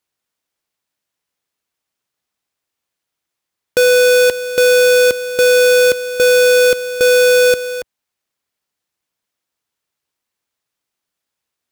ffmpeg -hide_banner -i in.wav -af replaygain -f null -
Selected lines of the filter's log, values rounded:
track_gain = -5.5 dB
track_peak = 0.254